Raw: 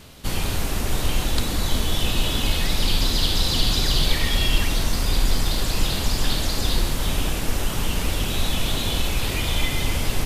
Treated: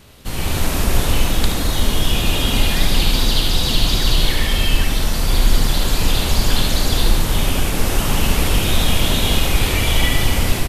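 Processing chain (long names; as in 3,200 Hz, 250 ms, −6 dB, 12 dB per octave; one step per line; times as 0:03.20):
high-shelf EQ 4,700 Hz −5.5 dB
wrong playback speed 25 fps video run at 24 fps
high-shelf EQ 10,000 Hz +9 dB
single-tap delay 74 ms −6 dB
automatic gain control
level −1 dB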